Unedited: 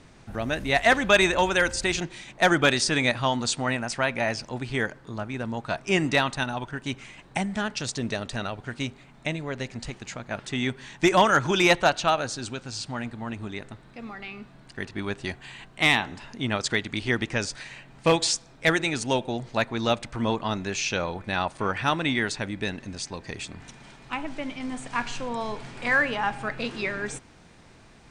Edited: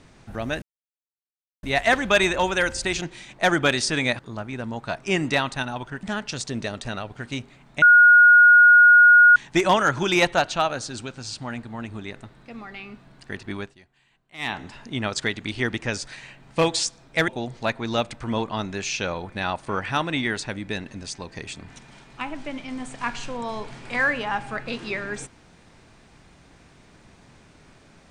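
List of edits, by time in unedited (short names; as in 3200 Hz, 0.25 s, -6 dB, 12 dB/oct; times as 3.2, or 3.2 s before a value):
0.62 insert silence 1.01 s
3.18–5 cut
6.84–7.51 cut
9.3–10.84 bleep 1440 Hz -8.5 dBFS
15.04–16.05 dip -21 dB, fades 0.19 s
18.76–19.2 cut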